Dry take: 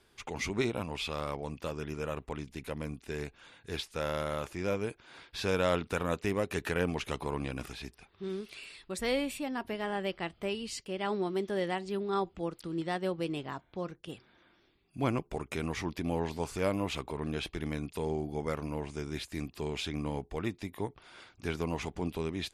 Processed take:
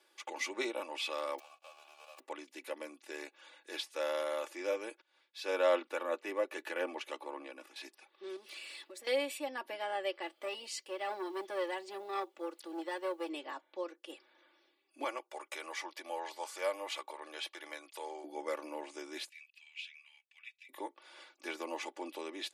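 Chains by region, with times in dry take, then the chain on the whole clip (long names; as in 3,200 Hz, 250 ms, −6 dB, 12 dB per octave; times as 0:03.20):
0:01.38–0:02.18: spectral envelope flattened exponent 0.1 + formant filter a
0:05.01–0:07.76: high-pass filter 58 Hz + parametric band 8,000 Hz −7 dB 2.3 octaves + multiband upward and downward expander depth 70%
0:08.36–0:09.07: low-shelf EQ 200 Hz +8.5 dB + downward compressor, threshold −48 dBFS + leveller curve on the samples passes 2
0:10.22–0:13.29: log-companded quantiser 8 bits + saturating transformer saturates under 850 Hz
0:15.04–0:18.24: high-pass filter 590 Hz + notch filter 2,600 Hz, Q 20
0:19.29–0:20.69: four-pole ladder high-pass 2,300 Hz, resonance 70% + high-shelf EQ 5,900 Hz −10 dB
whole clip: Butterworth high-pass 350 Hz 36 dB per octave; notch filter 1,400 Hz, Q 19; comb filter 3.5 ms, depth 79%; level −3.5 dB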